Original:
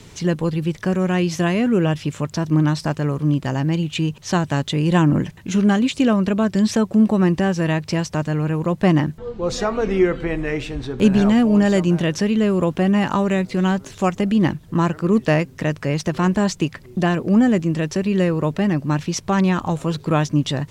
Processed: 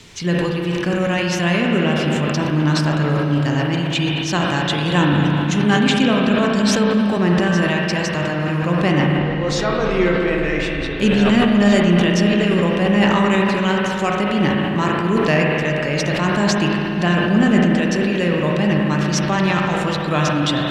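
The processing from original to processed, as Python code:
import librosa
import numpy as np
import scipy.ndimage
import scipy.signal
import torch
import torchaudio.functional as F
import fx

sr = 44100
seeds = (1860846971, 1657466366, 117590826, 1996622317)

y = fx.peak_eq(x, sr, hz=3300.0, db=8.0, octaves=2.6)
y = fx.rev_spring(y, sr, rt60_s=3.6, pass_ms=(34, 52), chirp_ms=75, drr_db=-1.5)
y = fx.sustainer(y, sr, db_per_s=25.0)
y = F.gain(torch.from_numpy(y), -3.5).numpy()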